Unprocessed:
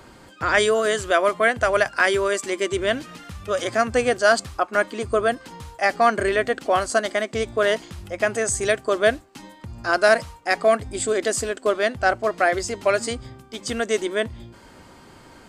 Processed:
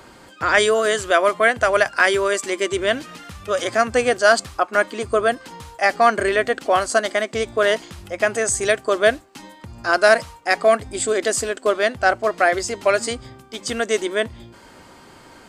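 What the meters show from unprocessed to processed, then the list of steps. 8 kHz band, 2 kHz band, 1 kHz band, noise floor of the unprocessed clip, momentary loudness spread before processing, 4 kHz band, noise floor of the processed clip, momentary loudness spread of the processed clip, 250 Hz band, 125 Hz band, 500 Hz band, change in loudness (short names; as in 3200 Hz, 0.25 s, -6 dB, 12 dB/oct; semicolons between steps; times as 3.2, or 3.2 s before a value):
+3.0 dB, +3.0 dB, +2.5 dB, -48 dBFS, 11 LU, +3.0 dB, -46 dBFS, 9 LU, +0.5 dB, -1.5 dB, +2.0 dB, +2.5 dB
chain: low shelf 220 Hz -6 dB; gain +3 dB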